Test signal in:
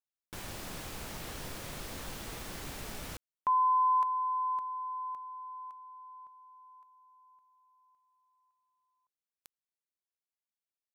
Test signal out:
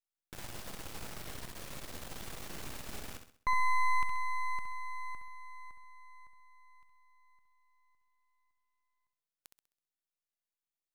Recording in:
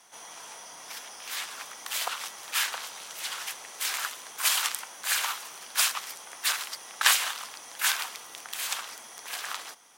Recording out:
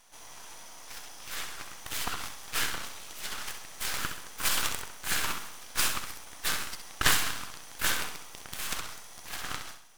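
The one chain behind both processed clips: dynamic EQ 1400 Hz, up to +4 dB, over -45 dBFS, Q 1.5; half-wave rectifier; flutter echo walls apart 11.2 m, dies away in 0.49 s

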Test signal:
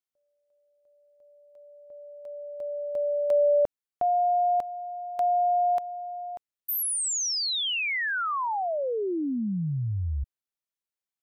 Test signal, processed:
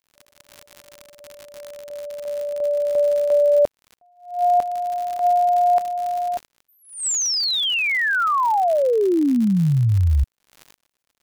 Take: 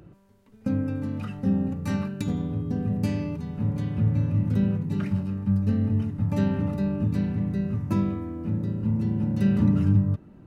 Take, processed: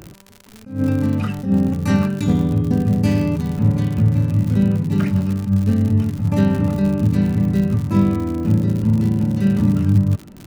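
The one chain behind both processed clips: vocal rider within 4 dB 0.5 s; crackle 96/s -33 dBFS; attack slew limiter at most 140 dB/s; gain +8.5 dB

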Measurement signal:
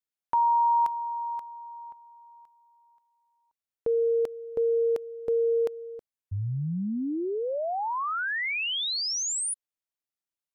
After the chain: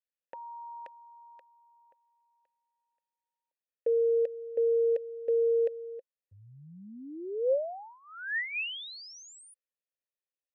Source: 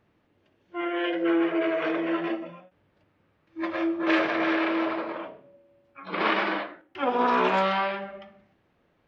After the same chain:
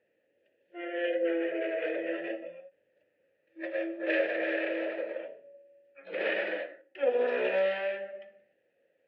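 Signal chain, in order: vowel filter e; gain +6 dB

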